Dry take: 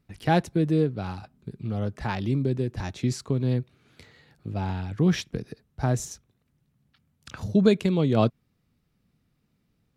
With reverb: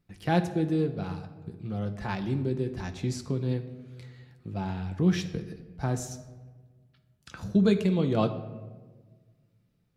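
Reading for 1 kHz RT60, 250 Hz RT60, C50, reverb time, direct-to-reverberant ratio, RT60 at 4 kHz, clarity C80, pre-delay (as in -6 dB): 1.2 s, 1.8 s, 11.5 dB, 1.4 s, 6.0 dB, 0.75 s, 13.5 dB, 6 ms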